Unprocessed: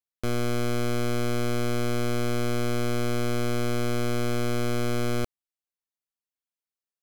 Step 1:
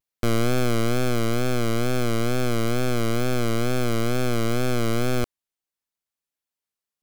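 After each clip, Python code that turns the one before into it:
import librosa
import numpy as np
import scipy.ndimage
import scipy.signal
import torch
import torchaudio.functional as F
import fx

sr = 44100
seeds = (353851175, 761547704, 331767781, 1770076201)

y = fx.rider(x, sr, range_db=10, speed_s=2.0)
y = fx.vibrato(y, sr, rate_hz=2.2, depth_cents=89.0)
y = y * 10.0 ** (3.5 / 20.0)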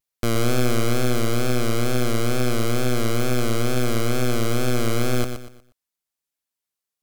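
y = fx.peak_eq(x, sr, hz=12000.0, db=4.0, octaves=2.3)
y = fx.echo_crushed(y, sr, ms=120, feedback_pct=35, bits=9, wet_db=-8.0)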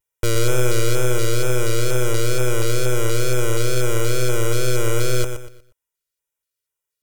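y = x + 0.83 * np.pad(x, (int(2.1 * sr / 1000.0), 0))[:len(x)]
y = fx.dynamic_eq(y, sr, hz=7300.0, q=1.1, threshold_db=-46.0, ratio=4.0, max_db=5)
y = fx.filter_lfo_notch(y, sr, shape='square', hz=2.1, low_hz=870.0, high_hz=4400.0, q=1.7)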